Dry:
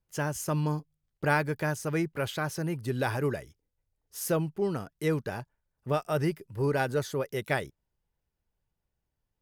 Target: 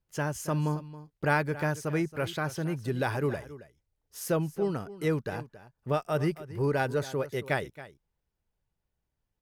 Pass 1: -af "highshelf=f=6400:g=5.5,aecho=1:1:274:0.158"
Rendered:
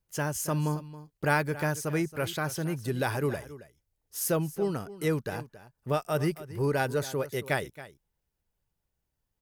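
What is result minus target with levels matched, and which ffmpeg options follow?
8 kHz band +6.0 dB
-af "highshelf=f=6400:g=-5,aecho=1:1:274:0.158"

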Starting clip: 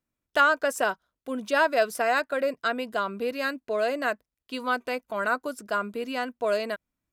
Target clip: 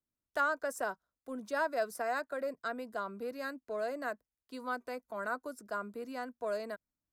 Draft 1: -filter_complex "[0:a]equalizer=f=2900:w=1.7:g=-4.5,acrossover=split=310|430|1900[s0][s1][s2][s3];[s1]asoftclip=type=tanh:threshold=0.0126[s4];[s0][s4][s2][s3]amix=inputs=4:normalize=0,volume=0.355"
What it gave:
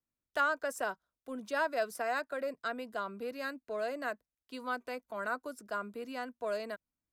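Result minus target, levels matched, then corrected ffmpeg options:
4 kHz band +3.5 dB
-filter_complex "[0:a]equalizer=f=2900:w=1.7:g=-12,acrossover=split=310|430|1900[s0][s1][s2][s3];[s1]asoftclip=type=tanh:threshold=0.0126[s4];[s0][s4][s2][s3]amix=inputs=4:normalize=0,volume=0.355"

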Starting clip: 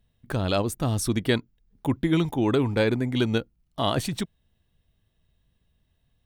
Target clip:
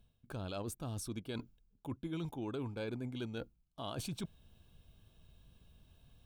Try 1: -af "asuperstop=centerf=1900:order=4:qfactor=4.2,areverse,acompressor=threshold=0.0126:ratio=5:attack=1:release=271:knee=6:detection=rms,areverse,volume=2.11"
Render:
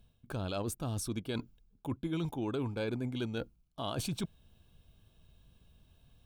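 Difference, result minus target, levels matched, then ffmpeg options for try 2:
compression: peak gain reduction -5 dB
-af "asuperstop=centerf=1900:order=4:qfactor=4.2,areverse,acompressor=threshold=0.00596:ratio=5:attack=1:release=271:knee=6:detection=rms,areverse,volume=2.11"

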